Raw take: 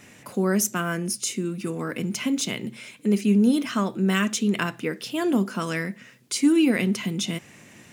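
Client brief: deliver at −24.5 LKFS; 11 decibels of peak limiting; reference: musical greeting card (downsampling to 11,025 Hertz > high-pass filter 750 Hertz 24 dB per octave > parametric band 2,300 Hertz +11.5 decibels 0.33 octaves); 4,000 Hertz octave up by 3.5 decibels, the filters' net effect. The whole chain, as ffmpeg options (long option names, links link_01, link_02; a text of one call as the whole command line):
ffmpeg -i in.wav -af "equalizer=frequency=4000:width_type=o:gain=3,alimiter=limit=-19dB:level=0:latency=1,aresample=11025,aresample=44100,highpass=frequency=750:width=0.5412,highpass=frequency=750:width=1.3066,equalizer=frequency=2300:width_type=o:width=0.33:gain=11.5,volume=8dB" out.wav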